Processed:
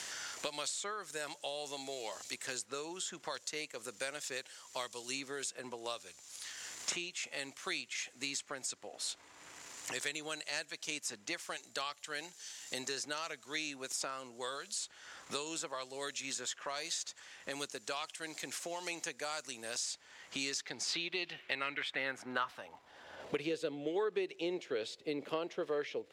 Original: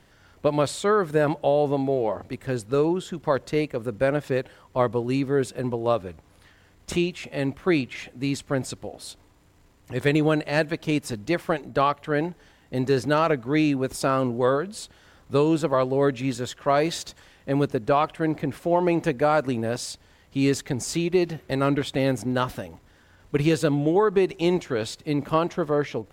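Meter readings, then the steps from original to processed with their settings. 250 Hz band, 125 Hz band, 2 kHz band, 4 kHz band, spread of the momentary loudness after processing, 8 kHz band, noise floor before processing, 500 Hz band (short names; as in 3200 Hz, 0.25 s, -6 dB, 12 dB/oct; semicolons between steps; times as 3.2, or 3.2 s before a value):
-22.0 dB, -30.5 dB, -8.5 dB, -3.5 dB, 7 LU, -1.0 dB, -57 dBFS, -18.5 dB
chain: band-pass sweep 6800 Hz -> 460 Hz, 20.37–23.55; three-band squash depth 100%; gain +4.5 dB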